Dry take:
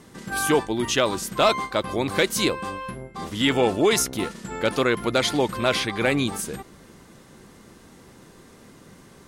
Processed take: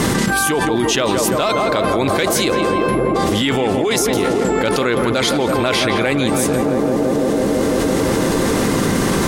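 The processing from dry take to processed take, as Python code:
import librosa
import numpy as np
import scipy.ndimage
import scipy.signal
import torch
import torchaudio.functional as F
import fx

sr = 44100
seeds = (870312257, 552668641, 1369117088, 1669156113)

y = fx.echo_tape(x, sr, ms=168, feedback_pct=89, wet_db=-6.5, lp_hz=1400.0, drive_db=7.0, wow_cents=9)
y = fx.env_flatten(y, sr, amount_pct=100)
y = y * librosa.db_to_amplitude(-1.5)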